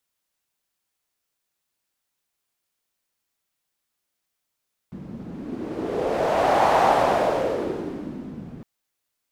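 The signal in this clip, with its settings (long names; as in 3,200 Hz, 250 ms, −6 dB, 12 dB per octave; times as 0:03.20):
wind from filtered noise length 3.71 s, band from 200 Hz, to 760 Hz, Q 3, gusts 1, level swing 19.5 dB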